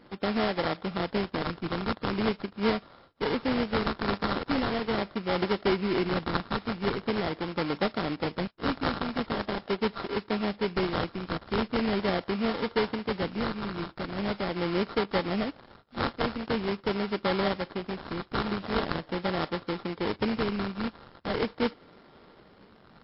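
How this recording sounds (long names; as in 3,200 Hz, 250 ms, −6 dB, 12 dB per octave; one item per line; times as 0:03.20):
a buzz of ramps at a fixed pitch in blocks of 32 samples
phaser sweep stages 2, 0.42 Hz, lowest notch 660–2,900 Hz
aliases and images of a low sample rate 2,600 Hz, jitter 20%
MP3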